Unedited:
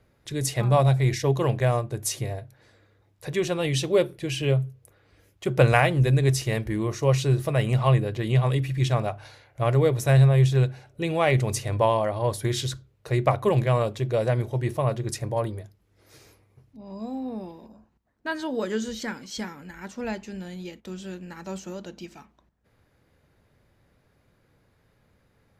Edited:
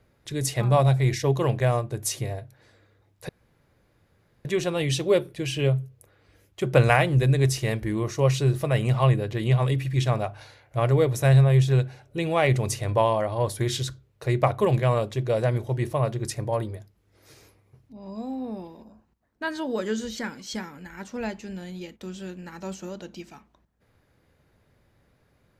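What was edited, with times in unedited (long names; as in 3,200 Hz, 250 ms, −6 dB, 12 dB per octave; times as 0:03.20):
0:03.29: splice in room tone 1.16 s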